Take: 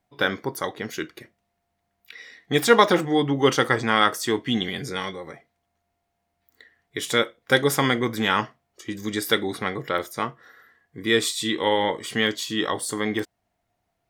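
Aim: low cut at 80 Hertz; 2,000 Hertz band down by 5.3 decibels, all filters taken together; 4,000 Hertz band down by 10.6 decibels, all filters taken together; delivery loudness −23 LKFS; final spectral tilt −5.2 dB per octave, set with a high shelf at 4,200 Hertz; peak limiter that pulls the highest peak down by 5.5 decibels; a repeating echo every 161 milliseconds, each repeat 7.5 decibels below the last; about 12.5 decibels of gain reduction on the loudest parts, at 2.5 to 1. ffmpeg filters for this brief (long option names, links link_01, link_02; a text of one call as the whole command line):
ffmpeg -i in.wav -af "highpass=80,equalizer=frequency=2000:width_type=o:gain=-3.5,equalizer=frequency=4000:width_type=o:gain=-8,highshelf=frequency=4200:gain=-8.5,acompressor=threshold=-31dB:ratio=2.5,alimiter=limit=-19.5dB:level=0:latency=1,aecho=1:1:161|322|483|644|805:0.422|0.177|0.0744|0.0312|0.0131,volume=11dB" out.wav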